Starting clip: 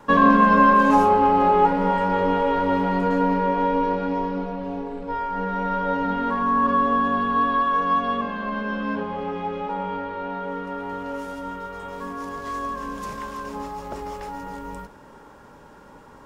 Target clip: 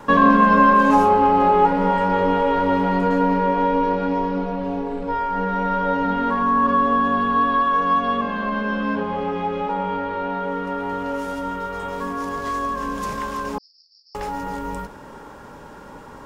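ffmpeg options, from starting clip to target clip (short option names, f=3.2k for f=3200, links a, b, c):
-filter_complex "[0:a]asplit=2[a][b];[b]acompressor=threshold=-31dB:ratio=6,volume=1.5dB[c];[a][c]amix=inputs=2:normalize=0,asettb=1/sr,asplit=3[d][e][f];[d]atrim=end=13.584[g];[e]atrim=start=13.58:end=14.15,asetpts=PTS-STARTPTS,afade=t=in:d=0.004:c=qsin,afade=t=out:st=0.566:d=0.004:c=qsin,asuperpass=centerf=4900:order=8:qfactor=5[h];[f]atrim=start=14.146[i];[g][h]acrossfade=d=0.004:c1=hsin:c2=qsin[j];[j][i]acrossfade=d=0.004:c1=qsin:c2=hsin"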